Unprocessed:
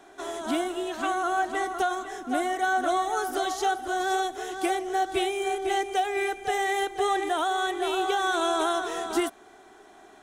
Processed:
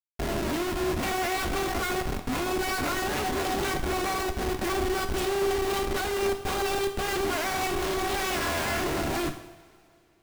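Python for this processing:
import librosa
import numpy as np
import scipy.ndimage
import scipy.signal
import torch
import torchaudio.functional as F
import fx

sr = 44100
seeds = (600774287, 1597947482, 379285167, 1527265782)

y = fx.self_delay(x, sr, depth_ms=0.54)
y = fx.schmitt(y, sr, flips_db=-31.0)
y = fx.rev_double_slope(y, sr, seeds[0], early_s=0.72, late_s=2.9, knee_db=-18, drr_db=5.5)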